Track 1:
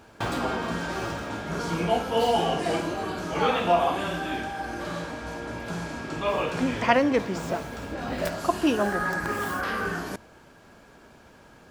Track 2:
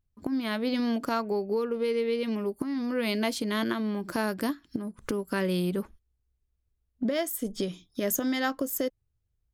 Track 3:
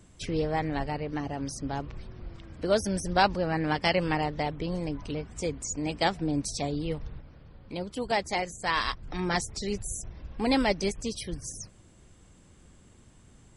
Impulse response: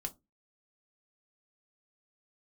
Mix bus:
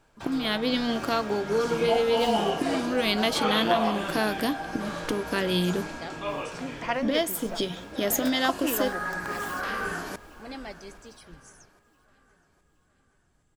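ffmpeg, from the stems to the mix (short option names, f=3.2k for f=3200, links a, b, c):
-filter_complex "[0:a]lowshelf=f=340:g=-6.5,dynaudnorm=f=220:g=9:m=13dB,volume=-11.5dB,asplit=2[a][b];[b]volume=-21dB[c];[1:a]equalizer=f=3.4k:t=o:w=0.66:g=8.5,volume=-0.5dB,asplit=2[d][e];[e]volume=-6dB[f];[2:a]volume=-17.5dB,asplit=3[g][h][i];[h]volume=-5dB[j];[i]volume=-23.5dB[k];[3:a]atrim=start_sample=2205[l];[f][j]amix=inputs=2:normalize=0[m];[m][l]afir=irnorm=-1:irlink=0[n];[c][k]amix=inputs=2:normalize=0,aecho=0:1:817|1634|2451|3268|4085|4902:1|0.44|0.194|0.0852|0.0375|0.0165[o];[a][d][g][n][o]amix=inputs=5:normalize=0"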